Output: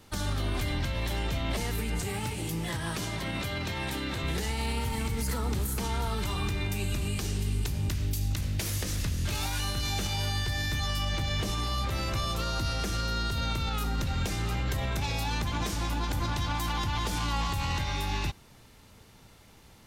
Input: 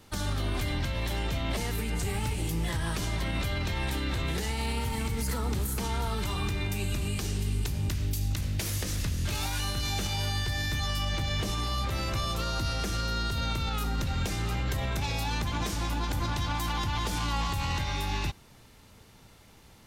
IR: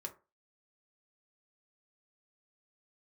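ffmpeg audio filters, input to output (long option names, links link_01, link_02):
-filter_complex "[0:a]asettb=1/sr,asplit=3[link_01][link_02][link_03];[link_01]atrim=end=2.014[link_04];[link_02]atrim=start=2.01:end=4.24,asetpts=PTS-STARTPTS,afade=type=in:duration=0.004:curve=qsin,afade=type=out:start_time=2.226:duration=0.004:curve=qsin,highpass=100[link_05];[link_03]atrim=start=4.236[link_06];[link_04][link_05]acrossfade=duration=0.004:curve1=hsin:curve2=qsin[link_07];[link_07][link_06]acrossfade=duration=0.004:curve1=qsin:curve2=hsin"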